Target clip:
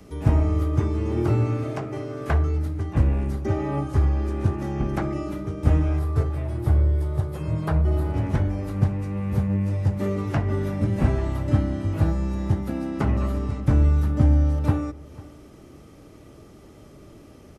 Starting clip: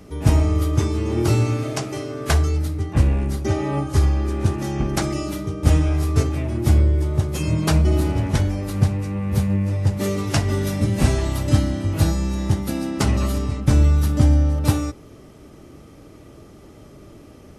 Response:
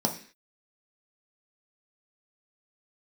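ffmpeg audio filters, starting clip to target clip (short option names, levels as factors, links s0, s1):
-filter_complex "[0:a]asettb=1/sr,asplit=3[s0][s1][s2];[s0]atrim=end=5.994[s3];[s1]atrim=start=5.99:end=8.14,asetpts=PTS-STARTPTS,afade=t=in:d=0.004:c=qsin,afade=t=out:st=2.146:d=0.004:c=qsin,equalizer=f=250:t=o:w=0.67:g=-11,equalizer=f=2500:t=o:w=0.67:g=-6,equalizer=f=6300:t=o:w=0.67:g=-8[s4];[s2]atrim=start=8.136[s5];[s3][s4]acrossfade=d=0.004:c1=hsin:c2=qsin[s6];[s6][s5]acrossfade=d=0.004:c1=qsin:c2=hsin,acrossover=split=370|530|2200[s7][s8][s9][s10];[s10]acompressor=threshold=0.00316:ratio=10[s11];[s7][s8][s9][s11]amix=inputs=4:normalize=0,aecho=1:1:496:0.0944,volume=0.708"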